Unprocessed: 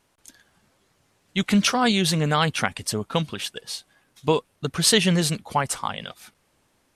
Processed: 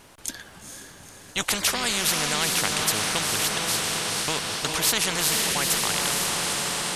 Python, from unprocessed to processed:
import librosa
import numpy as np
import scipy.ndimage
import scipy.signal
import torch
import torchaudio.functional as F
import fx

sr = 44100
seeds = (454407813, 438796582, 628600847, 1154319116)

p1 = x + fx.echo_diffused(x, sr, ms=463, feedback_pct=53, wet_db=-7, dry=0)
p2 = fx.spectral_comp(p1, sr, ratio=4.0)
y = F.gain(torch.from_numpy(p2), -2.5).numpy()